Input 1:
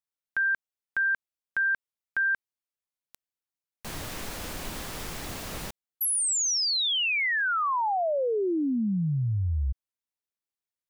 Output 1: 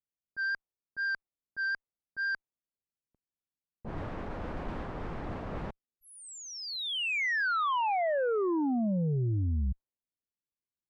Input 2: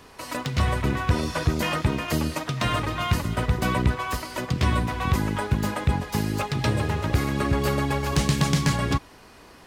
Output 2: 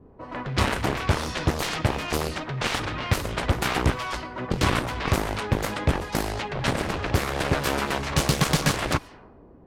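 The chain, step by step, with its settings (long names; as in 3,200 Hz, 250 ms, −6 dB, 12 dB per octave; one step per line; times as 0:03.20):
harmonic generator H 2 −33 dB, 3 −18 dB, 7 −11 dB, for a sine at −10.5 dBFS
pitch vibrato 4.1 Hz 14 cents
low-pass that shuts in the quiet parts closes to 320 Hz, open at −22 dBFS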